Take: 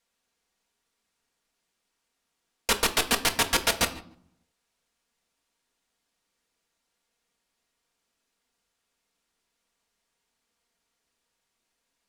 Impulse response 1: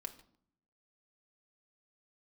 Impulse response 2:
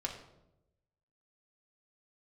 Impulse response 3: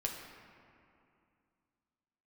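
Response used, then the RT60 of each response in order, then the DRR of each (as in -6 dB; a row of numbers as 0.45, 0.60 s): 1; not exponential, 0.90 s, 2.5 s; 4.5, -0.5, -0.5 dB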